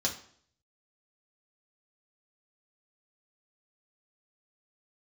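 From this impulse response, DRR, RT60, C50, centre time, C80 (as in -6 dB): -2.0 dB, 0.55 s, 10.5 dB, 16 ms, 14.0 dB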